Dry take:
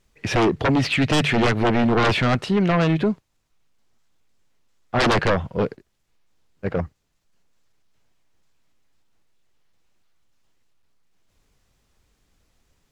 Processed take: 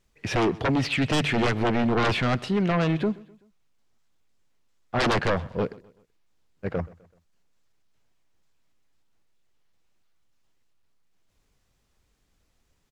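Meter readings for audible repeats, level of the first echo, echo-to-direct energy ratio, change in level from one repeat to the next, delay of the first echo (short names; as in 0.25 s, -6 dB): 2, -22.0 dB, -21.0 dB, -7.0 dB, 0.127 s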